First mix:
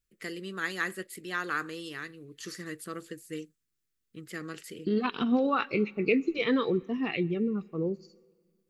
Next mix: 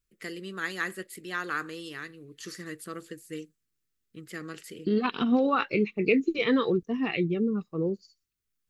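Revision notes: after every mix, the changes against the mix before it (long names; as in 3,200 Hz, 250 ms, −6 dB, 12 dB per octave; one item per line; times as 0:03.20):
second voice +4.0 dB
reverb: off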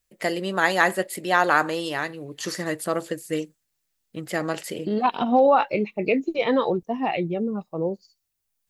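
first voice +10.5 dB
master: add flat-topped bell 730 Hz +15 dB 1 octave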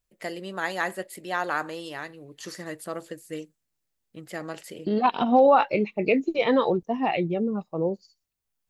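first voice −8.5 dB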